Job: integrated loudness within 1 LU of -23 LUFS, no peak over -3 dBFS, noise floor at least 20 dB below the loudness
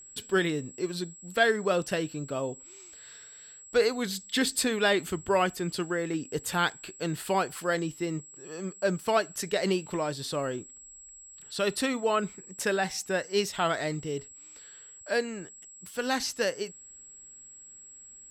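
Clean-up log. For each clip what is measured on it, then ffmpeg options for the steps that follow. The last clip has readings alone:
steady tone 7.7 kHz; tone level -47 dBFS; loudness -29.5 LUFS; peak level -11.0 dBFS; loudness target -23.0 LUFS
-> -af "bandreject=f=7700:w=30"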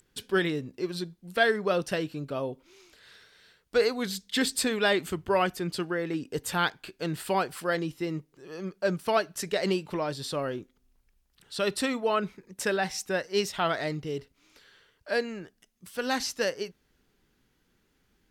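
steady tone not found; loudness -29.5 LUFS; peak level -11.0 dBFS; loudness target -23.0 LUFS
-> -af "volume=2.11"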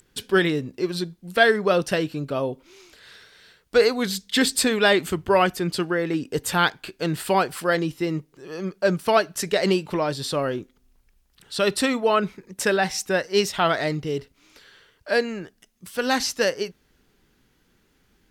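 loudness -23.0 LUFS; peak level -4.5 dBFS; noise floor -65 dBFS

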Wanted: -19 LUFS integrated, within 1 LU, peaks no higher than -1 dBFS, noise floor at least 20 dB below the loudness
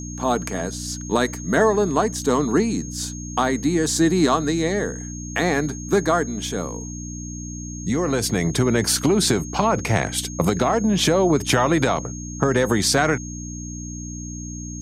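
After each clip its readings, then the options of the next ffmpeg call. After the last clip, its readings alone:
hum 60 Hz; highest harmonic 300 Hz; hum level -31 dBFS; steady tone 6.5 kHz; tone level -36 dBFS; loudness -21.0 LUFS; peak level -6.0 dBFS; loudness target -19.0 LUFS
-> -af "bandreject=f=60:t=h:w=4,bandreject=f=120:t=h:w=4,bandreject=f=180:t=h:w=4,bandreject=f=240:t=h:w=4,bandreject=f=300:t=h:w=4"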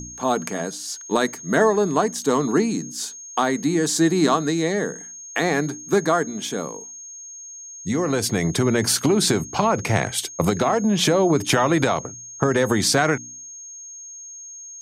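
hum not found; steady tone 6.5 kHz; tone level -36 dBFS
-> -af "bandreject=f=6500:w=30"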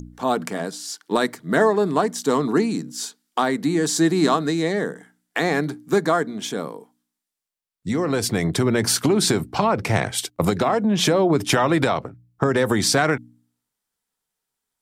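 steady tone not found; loudness -21.5 LUFS; peak level -6.5 dBFS; loudness target -19.0 LUFS
-> -af "volume=1.33"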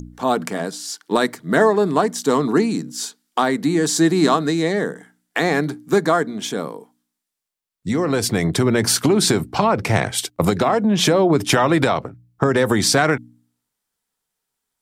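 loudness -19.0 LUFS; peak level -4.0 dBFS; noise floor -80 dBFS

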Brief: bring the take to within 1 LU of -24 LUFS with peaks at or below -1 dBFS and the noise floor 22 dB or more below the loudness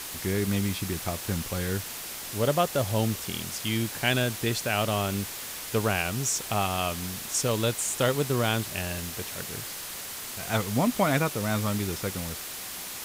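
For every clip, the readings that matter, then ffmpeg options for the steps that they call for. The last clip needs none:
noise floor -38 dBFS; noise floor target -50 dBFS; loudness -28.0 LUFS; peak level -10.5 dBFS; loudness target -24.0 LUFS
-> -af "afftdn=nr=12:nf=-38"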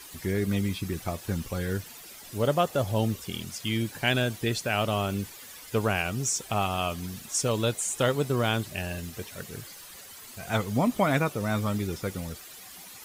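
noise floor -46 dBFS; noise floor target -51 dBFS
-> -af "afftdn=nr=6:nf=-46"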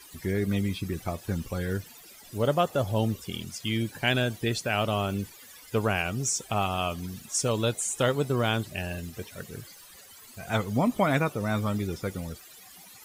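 noise floor -50 dBFS; noise floor target -51 dBFS
-> -af "afftdn=nr=6:nf=-50"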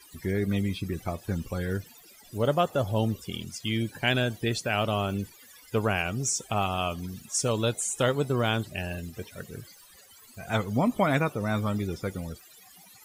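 noise floor -54 dBFS; loudness -28.5 LUFS; peak level -11.0 dBFS; loudness target -24.0 LUFS
-> -af "volume=1.68"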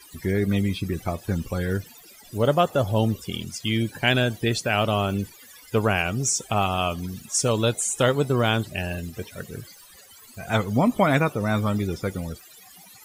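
loudness -24.0 LUFS; peak level -6.5 dBFS; noise floor -49 dBFS

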